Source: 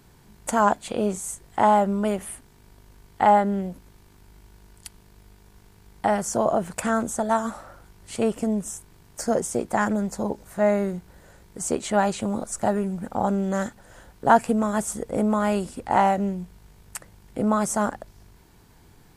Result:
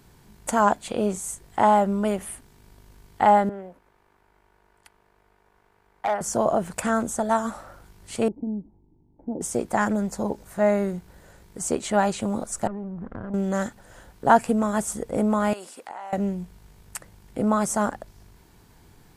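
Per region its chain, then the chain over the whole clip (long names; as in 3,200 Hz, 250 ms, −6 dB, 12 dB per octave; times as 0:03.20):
0:03.49–0:06.21: three-way crossover with the lows and the highs turned down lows −17 dB, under 410 Hz, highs −17 dB, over 2,200 Hz + hard clipping −18 dBFS
0:08.28–0:09.41: formant resonators in series u + low-shelf EQ 250 Hz +7.5 dB
0:12.67–0:13.34: lower of the sound and its delayed copy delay 0.57 ms + low-pass filter 1,100 Hz + downward compressor 12 to 1, threshold −30 dBFS
0:15.53–0:16.13: high-pass filter 570 Hz + downward compressor 12 to 1, threshold −33 dBFS
whole clip: no processing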